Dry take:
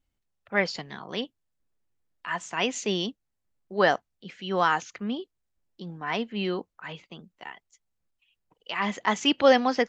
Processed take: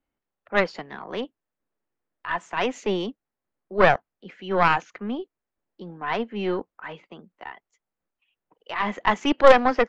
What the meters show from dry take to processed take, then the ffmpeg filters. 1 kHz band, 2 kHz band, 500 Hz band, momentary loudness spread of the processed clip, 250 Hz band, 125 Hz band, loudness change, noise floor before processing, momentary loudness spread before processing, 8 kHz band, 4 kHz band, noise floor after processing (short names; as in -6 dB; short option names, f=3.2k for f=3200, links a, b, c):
+4.5 dB, +3.0 dB, +4.5 dB, 22 LU, +1.0 dB, +2.5 dB, +3.5 dB, -80 dBFS, 21 LU, n/a, -3.5 dB, under -85 dBFS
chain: -filter_complex "[0:a]acrossover=split=210 2200:gain=0.2 1 0.178[a][b][c];[a][b][c]amix=inputs=3:normalize=0,aeval=exprs='0.398*(cos(1*acos(clip(val(0)/0.398,-1,1)))-cos(1*PI/2))+0.112*(cos(2*acos(clip(val(0)/0.398,-1,1)))-cos(2*PI/2))+0.178*(cos(4*acos(clip(val(0)/0.398,-1,1)))-cos(4*PI/2))+0.0562*(cos(6*acos(clip(val(0)/0.398,-1,1)))-cos(6*PI/2))+0.0158*(cos(8*acos(clip(val(0)/0.398,-1,1)))-cos(8*PI/2))':c=same,volume=4.5dB"